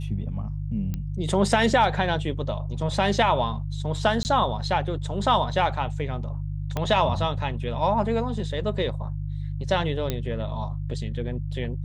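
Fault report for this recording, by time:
hum 50 Hz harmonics 3 -30 dBFS
0.94 s: pop -18 dBFS
4.23–4.25 s: dropout 19 ms
6.77 s: pop -13 dBFS
10.10 s: pop -12 dBFS

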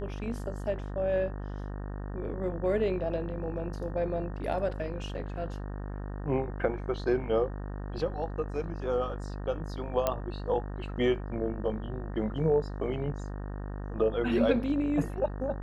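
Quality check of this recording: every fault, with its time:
buzz 50 Hz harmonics 37 -37 dBFS
10.07 s: pop -13 dBFS

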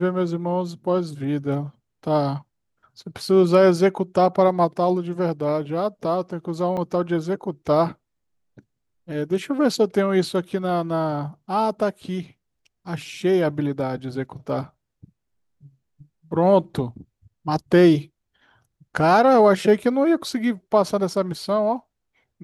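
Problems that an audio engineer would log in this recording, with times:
6.77–6.78 s: dropout 5.1 ms

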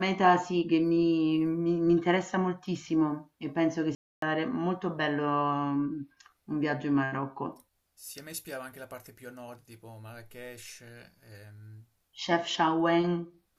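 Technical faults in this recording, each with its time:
3.95–4.22 s: dropout 273 ms

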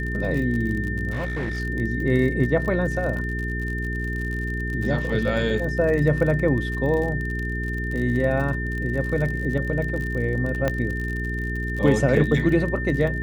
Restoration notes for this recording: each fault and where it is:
crackle 43 per s -29 dBFS
hum 60 Hz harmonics 7 -28 dBFS
whine 1.8 kHz -30 dBFS
1.11–1.60 s: clipped -23 dBFS
10.68 s: pop -10 dBFS

